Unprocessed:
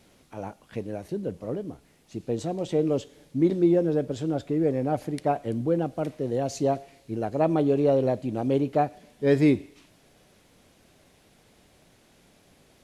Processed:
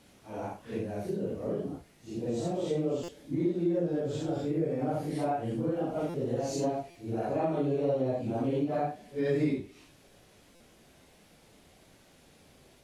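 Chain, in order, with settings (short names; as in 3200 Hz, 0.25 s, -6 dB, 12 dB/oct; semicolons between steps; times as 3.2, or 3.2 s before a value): phase scrambler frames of 0.2 s; compressor 2.5:1, threshold -29 dBFS, peak gain reduction 10.5 dB; stuck buffer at 3.03/6.09/6.9/10.55, samples 256, times 8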